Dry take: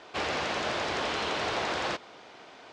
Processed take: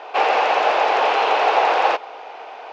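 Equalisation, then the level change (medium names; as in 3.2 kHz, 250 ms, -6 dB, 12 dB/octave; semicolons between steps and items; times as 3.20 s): cabinet simulation 430–6900 Hz, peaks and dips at 460 Hz +6 dB, 800 Hz +8 dB, 2.6 kHz +8 dB; peaking EQ 790 Hz +13 dB 2.9 oct; 0.0 dB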